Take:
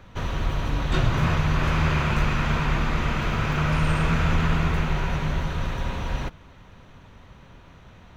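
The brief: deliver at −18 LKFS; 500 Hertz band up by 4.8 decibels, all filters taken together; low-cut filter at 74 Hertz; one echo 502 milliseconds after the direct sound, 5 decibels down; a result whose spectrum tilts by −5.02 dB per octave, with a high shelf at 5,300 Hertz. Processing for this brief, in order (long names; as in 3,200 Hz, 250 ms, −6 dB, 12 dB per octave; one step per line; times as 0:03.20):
high-pass filter 74 Hz
parametric band 500 Hz +6 dB
high-shelf EQ 5,300 Hz +4.5 dB
single-tap delay 502 ms −5 dB
level +5.5 dB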